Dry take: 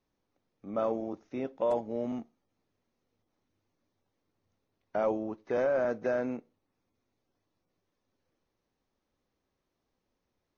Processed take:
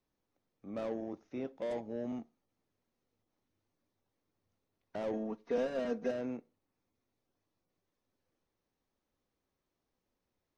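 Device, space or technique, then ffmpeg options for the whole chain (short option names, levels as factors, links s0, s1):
one-band saturation: -filter_complex "[0:a]acrossover=split=500|2900[s0][s1][s2];[s1]asoftclip=type=tanh:threshold=0.0112[s3];[s0][s3][s2]amix=inputs=3:normalize=0,asettb=1/sr,asplit=3[s4][s5][s6];[s4]atrim=end=5.134[s7];[s5]atrim=start=5.13:end=6.11,asetpts=PTS-STARTPTS,afade=t=in:d=0.004:c=qsin,afade=t=out:st=0.976:d=0.004:c=qsin,aecho=1:1:4.3:0.98,atrim=end_sample=43218[s8];[s6]atrim=start=6.106[s9];[s7][s8]acrossfade=d=0.004:c1=hsin:c2=qsin[s10];[s10][s9]acrossfade=d=0.004:c1=qsin:c2=hsin,volume=0.631"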